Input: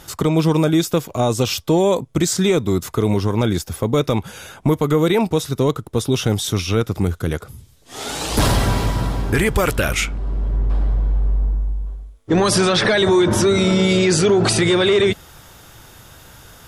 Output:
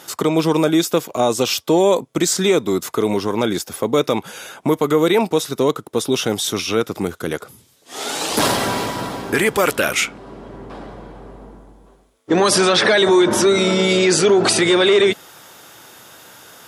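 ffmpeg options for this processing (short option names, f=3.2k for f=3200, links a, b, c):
-af "highpass=260,volume=2.5dB"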